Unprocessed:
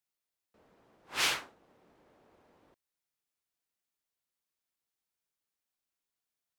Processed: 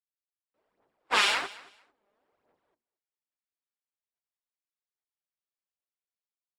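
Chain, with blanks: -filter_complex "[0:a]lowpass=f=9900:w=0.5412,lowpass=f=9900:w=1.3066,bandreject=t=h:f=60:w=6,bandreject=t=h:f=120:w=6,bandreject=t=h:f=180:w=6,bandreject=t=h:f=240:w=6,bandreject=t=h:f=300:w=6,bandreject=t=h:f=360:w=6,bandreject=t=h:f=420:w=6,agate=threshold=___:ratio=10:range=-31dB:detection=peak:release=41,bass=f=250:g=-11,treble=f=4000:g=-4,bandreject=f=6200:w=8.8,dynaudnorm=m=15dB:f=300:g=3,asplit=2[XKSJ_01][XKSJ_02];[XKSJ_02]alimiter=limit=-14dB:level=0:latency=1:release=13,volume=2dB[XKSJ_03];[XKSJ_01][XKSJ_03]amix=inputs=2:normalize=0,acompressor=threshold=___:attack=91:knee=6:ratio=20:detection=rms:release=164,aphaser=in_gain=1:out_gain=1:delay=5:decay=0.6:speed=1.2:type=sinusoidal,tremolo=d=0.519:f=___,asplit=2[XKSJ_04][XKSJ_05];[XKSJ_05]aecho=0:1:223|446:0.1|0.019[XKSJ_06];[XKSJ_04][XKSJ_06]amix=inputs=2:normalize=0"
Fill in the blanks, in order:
-55dB, -24dB, 200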